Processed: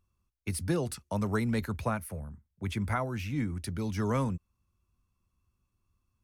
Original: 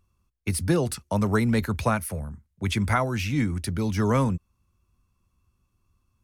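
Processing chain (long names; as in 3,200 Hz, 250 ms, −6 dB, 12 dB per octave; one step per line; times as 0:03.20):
0:01.77–0:03.60: parametric band 5,500 Hz −5.5 dB 2.4 octaves
level −7 dB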